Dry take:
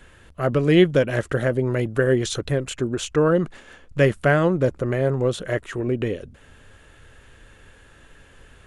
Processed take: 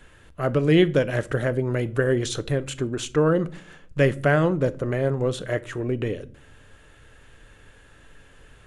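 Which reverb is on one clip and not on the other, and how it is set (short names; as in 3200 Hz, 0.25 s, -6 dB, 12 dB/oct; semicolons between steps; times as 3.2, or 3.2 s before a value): shoebox room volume 500 m³, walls furnished, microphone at 0.41 m; gain -2 dB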